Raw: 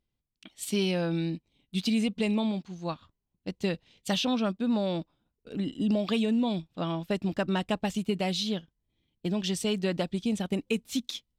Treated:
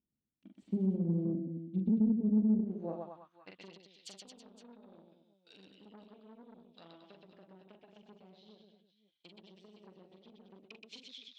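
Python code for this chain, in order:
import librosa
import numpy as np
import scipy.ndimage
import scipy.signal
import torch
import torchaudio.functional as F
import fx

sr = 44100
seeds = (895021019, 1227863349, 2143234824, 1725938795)

y = fx.dynamic_eq(x, sr, hz=1100.0, q=0.7, threshold_db=-45.0, ratio=4.0, max_db=-7)
y = fx.env_lowpass_down(y, sr, base_hz=350.0, full_db=-26.0)
y = fx.echo_multitap(y, sr, ms=(42, 124, 223, 326, 513, 528), db=(-4.5, -3.0, -7.0, -12.0, -13.5, -18.0))
y = fx.tube_stage(y, sr, drive_db=24.0, bias=0.65)
y = fx.filter_sweep_bandpass(y, sr, from_hz=220.0, to_hz=4200.0, start_s=2.53, end_s=3.86, q=1.6)
y = y * 10.0 ** (2.0 / 20.0)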